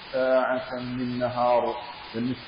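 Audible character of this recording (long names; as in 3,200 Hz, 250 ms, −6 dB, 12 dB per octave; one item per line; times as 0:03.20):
a quantiser's noise floor 6 bits, dither triangular
MP3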